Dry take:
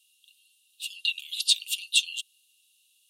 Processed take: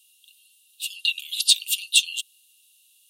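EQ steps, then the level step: treble shelf 11 kHz +10 dB; +3.5 dB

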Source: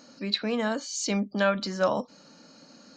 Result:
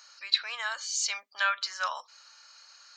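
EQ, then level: high-pass 1.1 kHz 24 dB/octave; +2.5 dB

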